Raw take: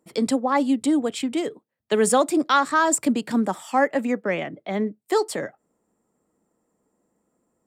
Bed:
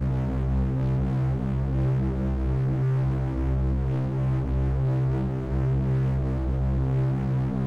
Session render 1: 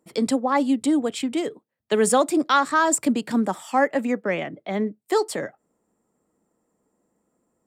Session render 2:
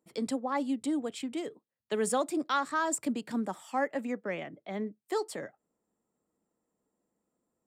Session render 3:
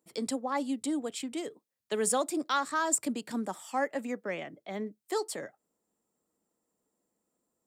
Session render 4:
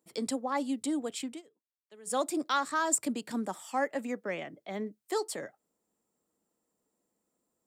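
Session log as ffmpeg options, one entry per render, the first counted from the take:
ffmpeg -i in.wav -af anull out.wav
ffmpeg -i in.wav -af "volume=-10.5dB" out.wav
ffmpeg -i in.wav -af "bass=frequency=250:gain=-3,treble=frequency=4000:gain=6" out.wav
ffmpeg -i in.wav -filter_complex "[0:a]asplit=3[link_01][link_02][link_03];[link_01]atrim=end=1.42,asetpts=PTS-STARTPTS,afade=type=out:start_time=1.28:duration=0.14:silence=0.0749894[link_04];[link_02]atrim=start=1.42:end=2.05,asetpts=PTS-STARTPTS,volume=-22.5dB[link_05];[link_03]atrim=start=2.05,asetpts=PTS-STARTPTS,afade=type=in:duration=0.14:silence=0.0749894[link_06];[link_04][link_05][link_06]concat=n=3:v=0:a=1" out.wav

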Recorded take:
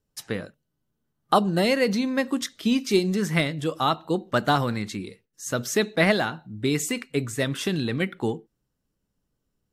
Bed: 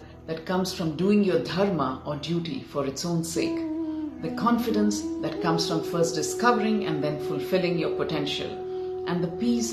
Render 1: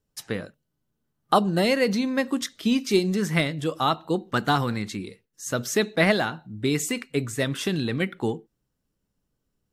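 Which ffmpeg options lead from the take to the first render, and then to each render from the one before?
ffmpeg -i in.wav -filter_complex "[0:a]asettb=1/sr,asplit=3[link_01][link_02][link_03];[link_01]atrim=end=4.204[link_04];[link_02]atrim=start=4.2:end=4.7,asetpts=PTS-STARTPTS,afade=type=in:duration=0.004:curve=qsin,afade=type=out:start_time=0.496:duration=0.004:curve=qsin,equalizer=frequency=600:width=7.5:gain=-11.5[link_05];[link_03]atrim=start=4.696[link_06];[link_04][link_05]acrossfade=duration=0.004:curve1=hsin:curve2=qsin[link_07];[link_07][link_06]acrossfade=duration=0.004:curve1=qsin:curve2=hsin" out.wav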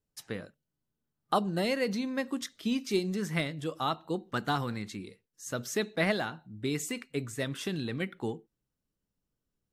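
ffmpeg -i in.wav -af "volume=-8dB" out.wav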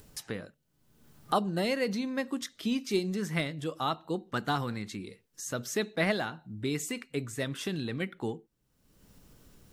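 ffmpeg -i in.wav -af "acompressor=mode=upward:threshold=-34dB:ratio=2.5" out.wav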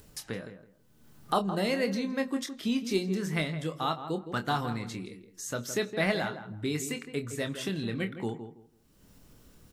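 ffmpeg -i in.wav -filter_complex "[0:a]asplit=2[link_01][link_02];[link_02]adelay=26,volume=-8.5dB[link_03];[link_01][link_03]amix=inputs=2:normalize=0,asplit=2[link_04][link_05];[link_05]adelay=164,lowpass=frequency=1500:poles=1,volume=-9.5dB,asplit=2[link_06][link_07];[link_07]adelay=164,lowpass=frequency=1500:poles=1,volume=0.23,asplit=2[link_08][link_09];[link_09]adelay=164,lowpass=frequency=1500:poles=1,volume=0.23[link_10];[link_06][link_08][link_10]amix=inputs=3:normalize=0[link_11];[link_04][link_11]amix=inputs=2:normalize=0" out.wav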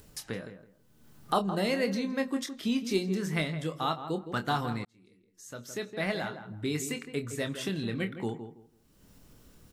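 ffmpeg -i in.wav -filter_complex "[0:a]asplit=2[link_01][link_02];[link_01]atrim=end=4.85,asetpts=PTS-STARTPTS,afade=type=out:start_time=4.846:duration=0.004:curve=hsin[link_03];[link_02]atrim=start=4.85,asetpts=PTS-STARTPTS,afade=type=in:duration=1.9[link_04];[link_03][link_04]concat=n=2:v=0:a=1" out.wav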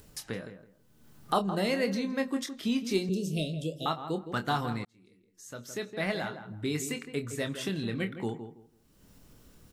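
ffmpeg -i in.wav -filter_complex "[0:a]asettb=1/sr,asplit=3[link_01][link_02][link_03];[link_01]atrim=end=3.094[link_04];[link_02]atrim=start=3.09:end=3.86,asetpts=PTS-STARTPTS,afade=type=in:duration=0.004:curve=qsin,afade=type=out:start_time=0.766:duration=0.004:curve=qsin,asuperstop=centerf=1300:order=20:qfactor=0.7[link_05];[link_03]atrim=start=3.856[link_06];[link_04][link_05]acrossfade=duration=0.004:curve1=hsin:curve2=qsin[link_07];[link_07][link_06]acrossfade=duration=0.004:curve1=qsin:curve2=hsin" out.wav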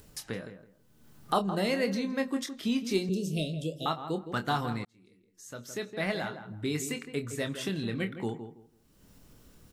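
ffmpeg -i in.wav -af anull out.wav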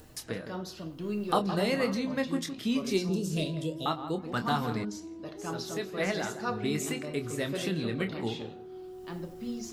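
ffmpeg -i in.wav -i bed.wav -filter_complex "[1:a]volume=-12.5dB[link_01];[0:a][link_01]amix=inputs=2:normalize=0" out.wav

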